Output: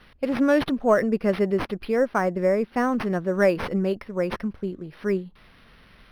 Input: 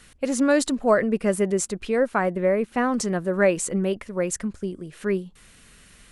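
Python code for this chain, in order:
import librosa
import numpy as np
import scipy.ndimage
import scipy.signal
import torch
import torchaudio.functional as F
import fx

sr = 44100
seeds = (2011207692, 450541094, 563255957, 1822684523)

y = fx.tracing_dist(x, sr, depth_ms=0.03)
y = np.interp(np.arange(len(y)), np.arange(len(y))[::6], y[::6])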